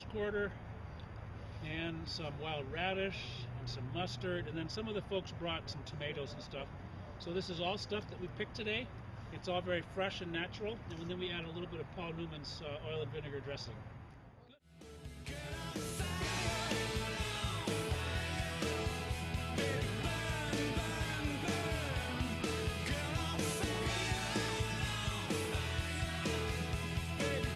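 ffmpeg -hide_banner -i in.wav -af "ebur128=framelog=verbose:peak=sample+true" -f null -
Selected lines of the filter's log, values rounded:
Integrated loudness:
  I:         -39.0 LUFS
  Threshold: -49.2 LUFS
Loudness range:
  LRA:         6.4 LU
  Threshold: -59.2 LUFS
  LRA low:   -43.0 LUFS
  LRA high:  -36.7 LUFS
Sample peak:
  Peak:      -23.4 dBFS
True peak:
  Peak:      -23.3 dBFS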